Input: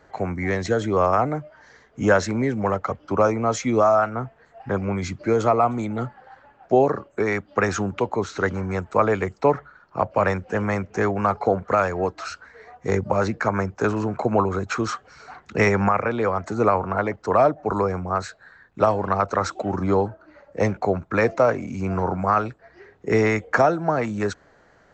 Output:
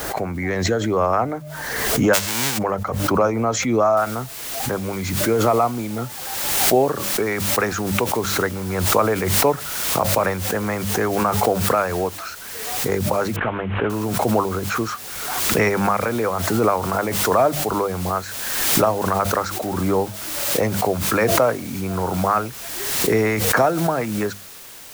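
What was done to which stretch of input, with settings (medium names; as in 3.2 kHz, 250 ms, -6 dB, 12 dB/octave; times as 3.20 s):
2.13–2.57 s: formants flattened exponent 0.1
3.97 s: noise floor step -56 dB -40 dB
13.36–13.90 s: CVSD coder 16 kbps
whole clip: hum notches 50/100/150/200 Hz; swell ahead of each attack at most 33 dB/s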